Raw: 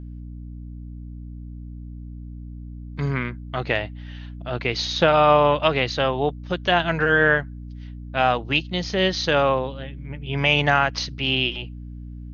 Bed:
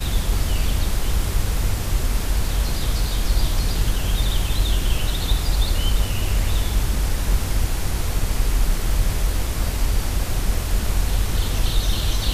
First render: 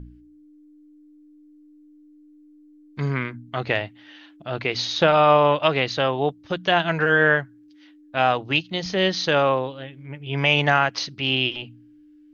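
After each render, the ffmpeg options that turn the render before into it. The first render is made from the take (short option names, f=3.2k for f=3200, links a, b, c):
-af "bandreject=f=60:t=h:w=4,bandreject=f=120:t=h:w=4,bandreject=f=180:t=h:w=4,bandreject=f=240:t=h:w=4"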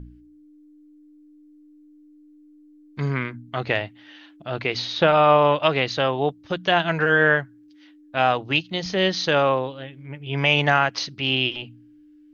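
-filter_complex "[0:a]asettb=1/sr,asplit=3[a][b][c];[a]atrim=end=4.794[d];[b]atrim=start=4.79:end=5.42,asetpts=PTS-STARTPTS,afade=t=in:d=0.004:c=qsin,afade=t=out:st=0.626:d=0.004:c=qsin,lowpass=4.3k[e];[c]atrim=start=5.416[f];[d][e]acrossfade=d=0.004:c1=hsin:c2=qsin[g];[g][f]acrossfade=d=0.004:c1=qsin:c2=hsin"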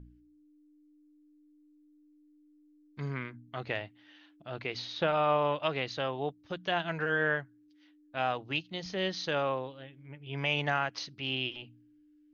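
-af "volume=-11.5dB"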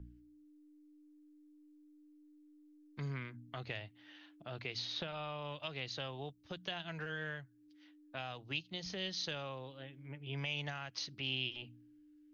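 -filter_complex "[0:a]alimiter=limit=-19dB:level=0:latency=1:release=387,acrossover=split=130|3000[a][b][c];[b]acompressor=threshold=-45dB:ratio=4[d];[a][d][c]amix=inputs=3:normalize=0"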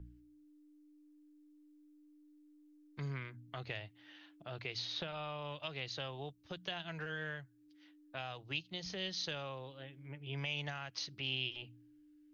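-af "equalizer=f=240:t=o:w=0.22:g=-8"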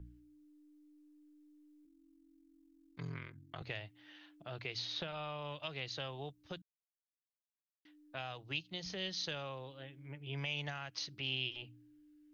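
-filter_complex "[0:a]asettb=1/sr,asplit=3[a][b][c];[a]atrim=end=1.854[d];[b]atrim=start=1.85:end=3.62,asetpts=PTS-STARTPTS,afade=t=in:d=0.004:c=qsin,afade=t=out:st=1.766:d=0.004:c=qsin,aeval=exprs='val(0)*sin(2*PI*22*n/s)':c=same[e];[c]atrim=start=3.616[f];[d][e]acrossfade=d=0.004:c1=hsin:c2=qsin[g];[g][f]acrossfade=d=0.004:c1=qsin:c2=hsin,asplit=3[h][i][j];[h]atrim=end=6.62,asetpts=PTS-STARTPTS,afade=t=out:st=6.616:d=0.004:c=hsin[k];[i]atrim=start=6.62:end=7.85,asetpts=PTS-STARTPTS,volume=0[l];[j]atrim=start=7.85,asetpts=PTS-STARTPTS,afade=t=in:d=0.004:c=hsin[m];[k][l][m]concat=n=3:v=0:a=1"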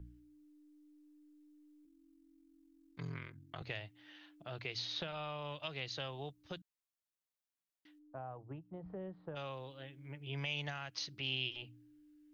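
-filter_complex "[0:a]asplit=3[a][b][c];[a]afade=t=out:st=7.98:d=0.02[d];[b]lowpass=f=1.1k:w=0.5412,lowpass=f=1.1k:w=1.3066,afade=t=in:st=7.98:d=0.02,afade=t=out:st=9.35:d=0.02[e];[c]afade=t=in:st=9.35:d=0.02[f];[d][e][f]amix=inputs=3:normalize=0"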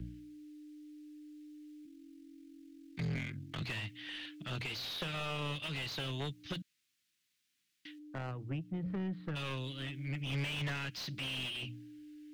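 -filter_complex "[0:a]acrossover=split=270|2000[a][b][c];[b]acrusher=bits=5:mix=0:aa=0.5[d];[a][d][c]amix=inputs=3:normalize=0,asplit=2[e][f];[f]highpass=f=720:p=1,volume=34dB,asoftclip=type=tanh:threshold=-26dB[g];[e][g]amix=inputs=2:normalize=0,lowpass=f=1.3k:p=1,volume=-6dB"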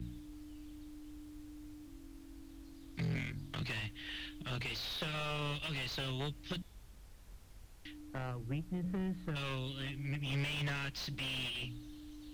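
-filter_complex "[1:a]volume=-35.5dB[a];[0:a][a]amix=inputs=2:normalize=0"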